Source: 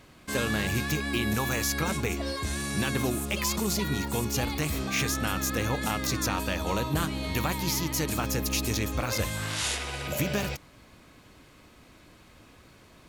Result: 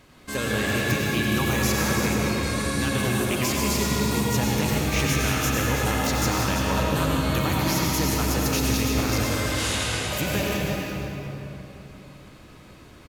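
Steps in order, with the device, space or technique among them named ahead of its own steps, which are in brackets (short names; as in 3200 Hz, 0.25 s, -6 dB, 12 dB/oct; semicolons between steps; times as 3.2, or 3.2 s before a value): cave (echo 0.337 s -8.5 dB; reverb RT60 3.3 s, pre-delay 85 ms, DRR -3 dB)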